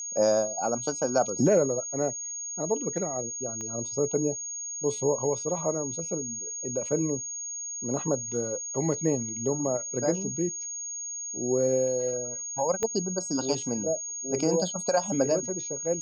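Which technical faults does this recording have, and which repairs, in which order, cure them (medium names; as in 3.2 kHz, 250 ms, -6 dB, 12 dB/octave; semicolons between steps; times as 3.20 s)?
whine 6.6 kHz -33 dBFS
3.61 s: pop -25 dBFS
12.83 s: pop -16 dBFS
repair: de-click; band-stop 6.6 kHz, Q 30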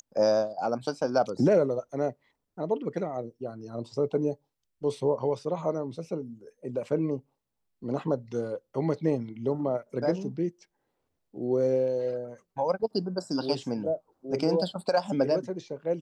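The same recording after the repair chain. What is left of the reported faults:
3.61 s: pop
12.83 s: pop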